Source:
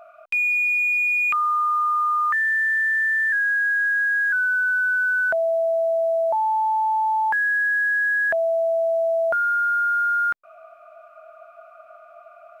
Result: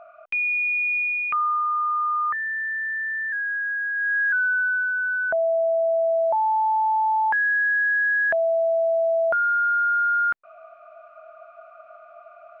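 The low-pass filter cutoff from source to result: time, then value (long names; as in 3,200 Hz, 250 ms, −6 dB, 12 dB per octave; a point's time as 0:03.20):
0:00.97 2,600 Hz
0:01.64 1,300 Hz
0:03.93 1,300 Hz
0:04.29 2,900 Hz
0:04.91 1,400 Hz
0:05.80 1,400 Hz
0:06.26 3,500 Hz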